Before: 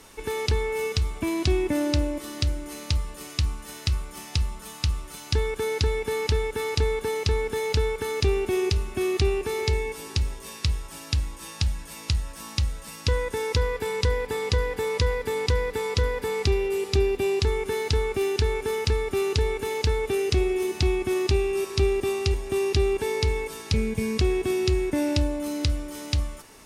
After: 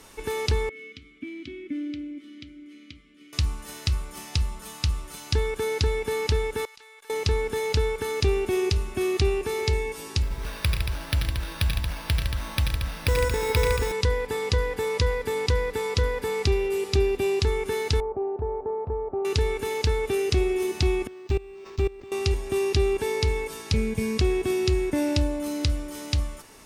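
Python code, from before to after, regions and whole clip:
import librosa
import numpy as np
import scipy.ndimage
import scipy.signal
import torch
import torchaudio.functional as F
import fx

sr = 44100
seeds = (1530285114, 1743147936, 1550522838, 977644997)

y = fx.chain(x, sr, fx.vowel_filter(vowel='i'),
    fx.peak_eq(hz=1300.0, db=9.5, octaves=0.31), at=(0.69, 3.33))
y = fx.chain(y, sr, fx.highpass(hz=1200.0, slope=12),
    fx.level_steps(step_db=23),
    fx.tube_stage(drive_db=23.0, bias=0.75), at=(6.65, 7.1))
y = fx.chain(y, sr, fx.resample_bad(factor=6, down='none', up='hold'),
    fx.echo_multitap(ms=(85, 91, 120, 159, 229), db=(-8.0, -8.0, -11.5, -7.5, -7.5)), at=(10.22, 13.92))
y = fx.chain(y, sr, fx.ladder_lowpass(hz=1000.0, resonance_pct=45),
    fx.peak_eq(hz=610.0, db=7.5, octaves=1.4), at=(18.0, 19.25))
y = fx.chain(y, sr, fx.peak_eq(hz=8900.0, db=-7.5, octaves=0.29),
    fx.level_steps(step_db=21),
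    fx.resample_linear(factor=4), at=(21.07, 22.12))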